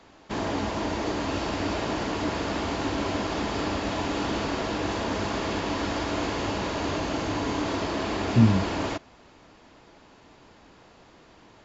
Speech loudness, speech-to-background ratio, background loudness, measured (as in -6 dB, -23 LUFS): -23.5 LUFS, 5.5 dB, -29.0 LUFS